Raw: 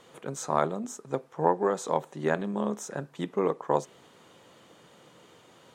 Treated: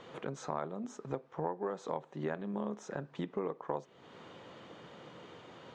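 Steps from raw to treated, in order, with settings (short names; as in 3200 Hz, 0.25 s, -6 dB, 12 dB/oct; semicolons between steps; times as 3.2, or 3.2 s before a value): compressor 3:1, threshold -42 dBFS, peak gain reduction 18 dB; air absorption 160 m; gain +4.5 dB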